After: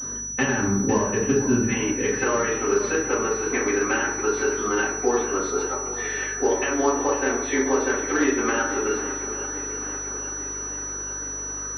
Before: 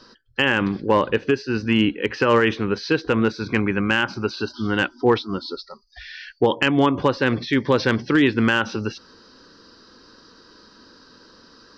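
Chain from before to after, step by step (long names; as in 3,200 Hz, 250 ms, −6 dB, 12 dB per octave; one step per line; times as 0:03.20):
high-pass filter 57 Hz 24 dB per octave, from 0:01.68 380 Hz
downward compressor 6 to 1, threshold −31 dBFS, peak gain reduction 17 dB
mains hum 50 Hz, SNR 19 dB
feedback echo with a long and a short gap by turns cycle 837 ms, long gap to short 1.5 to 1, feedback 57%, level −13 dB
convolution reverb RT60 0.75 s, pre-delay 4 ms, DRR −10 dB
switching amplifier with a slow clock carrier 5,900 Hz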